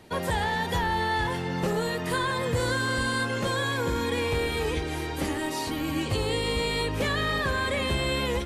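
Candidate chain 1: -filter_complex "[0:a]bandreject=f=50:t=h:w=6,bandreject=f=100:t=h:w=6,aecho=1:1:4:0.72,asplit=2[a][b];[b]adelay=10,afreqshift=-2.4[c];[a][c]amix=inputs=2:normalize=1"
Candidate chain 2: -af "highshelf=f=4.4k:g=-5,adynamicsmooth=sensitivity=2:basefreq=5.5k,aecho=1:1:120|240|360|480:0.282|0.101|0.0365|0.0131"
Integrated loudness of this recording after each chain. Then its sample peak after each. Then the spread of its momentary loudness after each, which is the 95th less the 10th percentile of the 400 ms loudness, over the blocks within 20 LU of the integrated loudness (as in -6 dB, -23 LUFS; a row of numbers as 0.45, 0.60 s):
-29.0, -27.5 LUFS; -16.0, -16.0 dBFS; 4, 4 LU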